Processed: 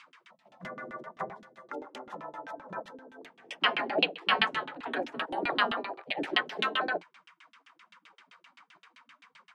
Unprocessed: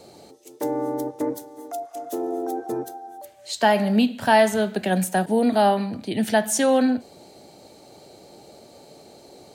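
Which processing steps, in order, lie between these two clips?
spectral gate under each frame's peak -20 dB weak; steep high-pass 170 Hz 36 dB/octave; LFO low-pass saw down 7.7 Hz 220–3200 Hz; trim +5.5 dB

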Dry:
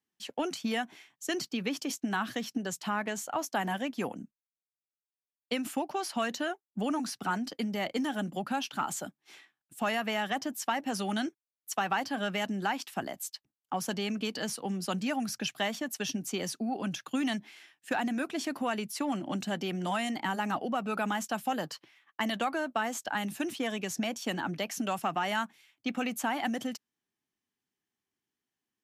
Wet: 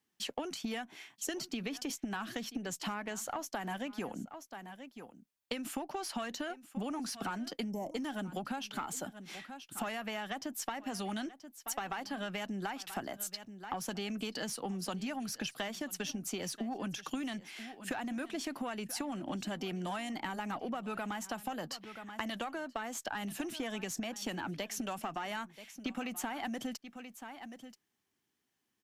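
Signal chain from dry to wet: single-diode clipper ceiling -21.5 dBFS; delay 981 ms -21 dB; time-frequency box 7.71–7.95 s, 1.1–5.2 kHz -24 dB; compression 12:1, threshold -41 dBFS, peak gain reduction 15 dB; trim +6 dB

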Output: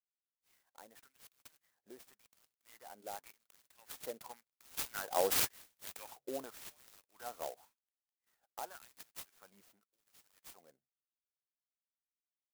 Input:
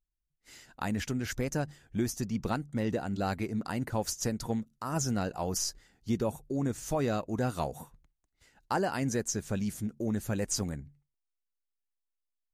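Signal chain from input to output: Doppler pass-by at 5.60 s, 15 m/s, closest 2.8 m; LFO high-pass sine 0.91 Hz 510–7000 Hz; sampling jitter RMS 0.088 ms; trim +6 dB

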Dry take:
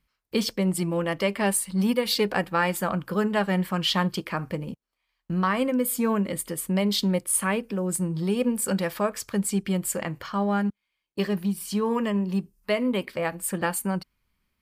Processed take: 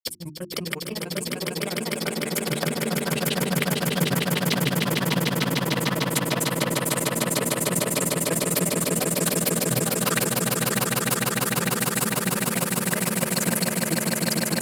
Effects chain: high-pass 72 Hz; in parallel at +3 dB: peak limiter -20 dBFS, peak gain reduction 10.5 dB; on the sum: treble shelf 5.8 kHz +11 dB; granulator 51 ms, spray 681 ms, pitch spread up and down by 3 st; compressor with a negative ratio -29 dBFS, ratio -1; hum notches 50/100/150/200/250/300/350 Hz; on a send: echo with a slow build-up 150 ms, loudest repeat 8, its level -4 dB; on the sum: trim -2 dB

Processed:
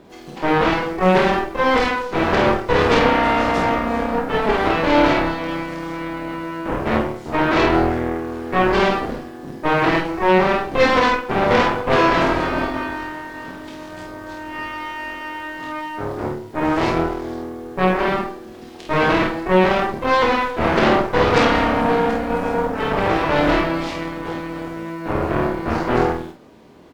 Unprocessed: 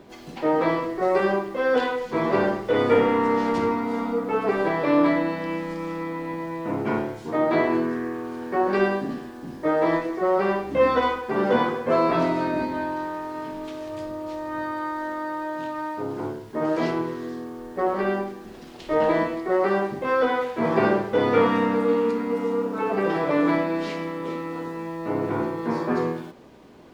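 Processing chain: Chebyshev shaper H 8 -11 dB, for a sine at -6 dBFS; early reflections 27 ms -5 dB, 49 ms -4.5 dB

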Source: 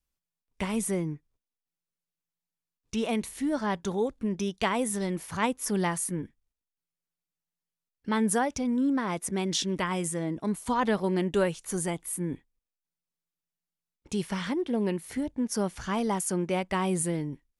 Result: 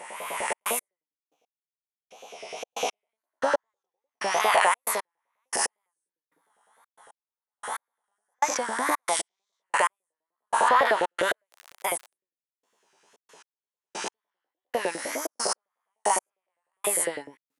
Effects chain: reverse spectral sustain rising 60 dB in 1.87 s; wow and flutter 130 cents; on a send at -20 dB: reverberation RT60 0.55 s, pre-delay 3 ms; on the sum: trance gate "xxxx.x....x....." 114 bpm -60 dB; 11.51–12.11 s: crackle 88 per s -34 dBFS; LFO high-pass saw up 9.9 Hz 500–1700 Hz; in parallel at +2 dB: peak limiter -15 dBFS, peak gain reduction 10.5 dB; on the sum: trim -4.5 dB

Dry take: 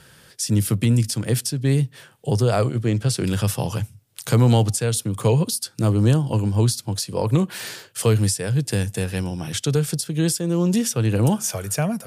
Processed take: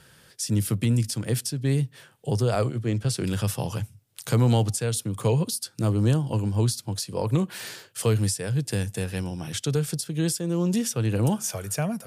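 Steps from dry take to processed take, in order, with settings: 2.55–3.05 s: three bands expanded up and down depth 40%; trim -4.5 dB

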